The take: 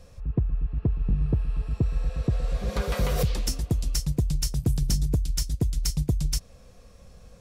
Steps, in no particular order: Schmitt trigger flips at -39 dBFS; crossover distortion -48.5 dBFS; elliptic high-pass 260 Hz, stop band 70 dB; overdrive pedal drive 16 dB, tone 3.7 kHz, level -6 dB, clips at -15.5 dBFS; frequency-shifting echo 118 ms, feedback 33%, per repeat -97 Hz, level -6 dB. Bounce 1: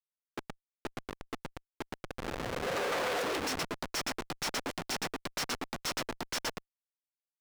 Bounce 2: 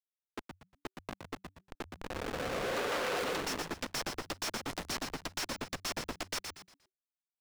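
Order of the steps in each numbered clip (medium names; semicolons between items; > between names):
elliptic high-pass > frequency-shifting echo > crossover distortion > Schmitt trigger > overdrive pedal; elliptic high-pass > Schmitt trigger > crossover distortion > overdrive pedal > frequency-shifting echo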